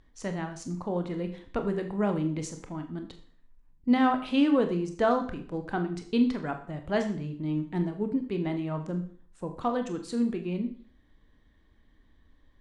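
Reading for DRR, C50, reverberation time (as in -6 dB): 6.0 dB, 11.0 dB, 0.50 s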